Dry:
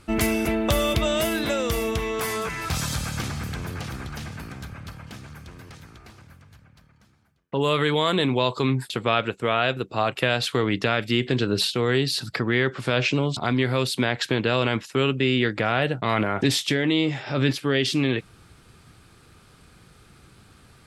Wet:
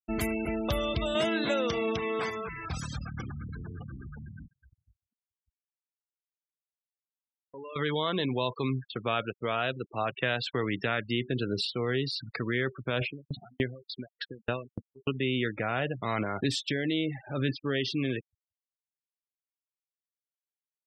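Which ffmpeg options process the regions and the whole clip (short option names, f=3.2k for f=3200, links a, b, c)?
-filter_complex "[0:a]asettb=1/sr,asplit=3[a][b][c];[a]atrim=end=1.154[d];[b]atrim=start=1.15:end=2.3,asetpts=PTS-STARTPTS,afade=t=in:d=0.004:c=qsin,afade=t=out:st=1.146:d=0.004:c=qsin,acontrast=37,highpass=150,lowpass=7.4k,aeval=exprs='sgn(val(0))*max(abs(val(0))-0.0112,0)':c=same[e];[c]atrim=start=2.296[f];[d][e]acrossfade=d=0.004:c1=hsin:c2=qsin[g];[g][f]acrossfade=d=0.004:c1=qsin:c2=hsin,asettb=1/sr,asplit=3[h][i][j];[h]atrim=end=4.474[k];[i]atrim=start=4.47:end=7.76,asetpts=PTS-STARTPTS,afade=t=in:d=0.004:c=qsin,afade=t=out:st=3.286:d=0.004:c=qsin,equalizer=f=140:t=o:w=2:g=-9,acompressor=threshold=-35dB:ratio=2.5:attack=3.2:release=140:knee=1:detection=peak[l];[j]atrim=start=7.756[m];[k][l]acrossfade=d=0.004:c1=hsin:c2=qsin[n];[n][m]acrossfade=d=0.004:c1=qsin:c2=hsin,asettb=1/sr,asplit=3[o][p][q];[o]atrim=end=9.724[r];[p]atrim=start=9.72:end=11.06,asetpts=PTS-STARTPTS,afade=t=in:d=0.004:c=qsin,afade=t=out:st=1.336:d=0.004:c=qsin,highpass=47,adynamicequalizer=threshold=0.0158:dfrequency=1800:dqfactor=2.6:tfrequency=1800:tqfactor=2.6:attack=5:release=100:ratio=0.375:range=2:mode=boostabove:tftype=bell[s];[q]atrim=start=11.056[t];[r][s]acrossfade=d=0.004:c1=hsin:c2=qsin[u];[u][t]acrossfade=d=0.004:c1=qsin:c2=hsin,asettb=1/sr,asplit=3[v][w][x];[v]atrim=end=13.014[y];[w]atrim=start=13.01:end=15.14,asetpts=PTS-STARTPTS,afade=t=in:d=0.004:c=qsin,afade=t=out:st=2.126:d=0.004:c=qsin,lowpass=f=3.3k:p=1,acontrast=29,aeval=exprs='val(0)*pow(10,-34*if(lt(mod(3.4*n/s,1),2*abs(3.4)/1000),1-mod(3.4*n/s,1)/(2*abs(3.4)/1000),(mod(3.4*n/s,1)-2*abs(3.4)/1000)/(1-2*abs(3.4)/1000))/20)':c=same[z];[x]atrim=start=15.136[aa];[y][z]acrossfade=d=0.004:c1=hsin:c2=qsin[ab];[ab][aa]acrossfade=d=0.004:c1=qsin:c2=hsin,afftfilt=real='re*gte(hypot(re,im),0.0501)':imag='im*gte(hypot(re,im),0.0501)':win_size=1024:overlap=0.75,agate=range=-33dB:threshold=-38dB:ratio=3:detection=peak,volume=-7.5dB"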